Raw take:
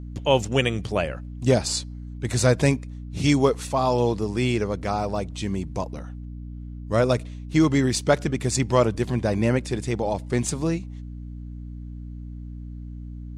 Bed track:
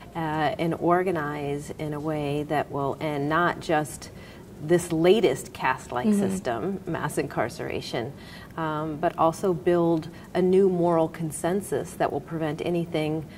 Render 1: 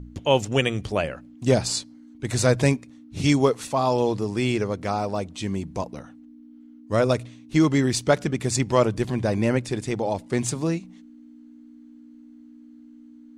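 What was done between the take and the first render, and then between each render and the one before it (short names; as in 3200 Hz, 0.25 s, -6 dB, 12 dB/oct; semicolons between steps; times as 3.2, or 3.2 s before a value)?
de-hum 60 Hz, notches 3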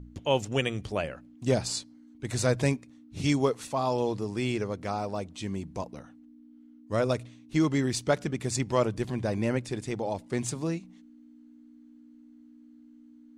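gain -6 dB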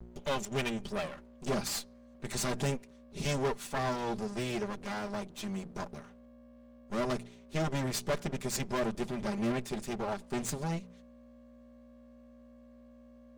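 minimum comb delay 5 ms; soft clip -25 dBFS, distortion -13 dB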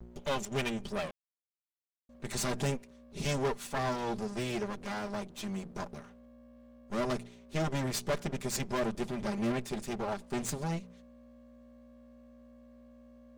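1.11–2.09 mute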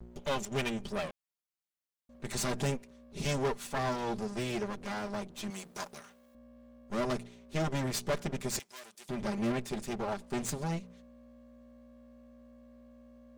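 5.5–6.35 tilt +3.5 dB/oct; 8.59–9.09 differentiator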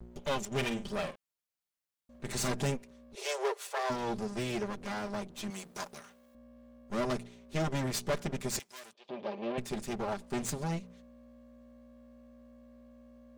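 0.51–2.54 doubler 47 ms -9 dB; 3.15–3.9 steep high-pass 370 Hz 96 dB/oct; 8.93–9.58 speaker cabinet 380–3600 Hz, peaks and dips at 520 Hz +5 dB, 1400 Hz -9 dB, 2000 Hz -9 dB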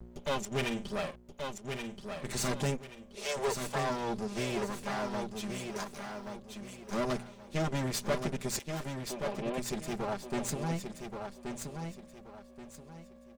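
feedback echo 1.128 s, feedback 30%, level -6 dB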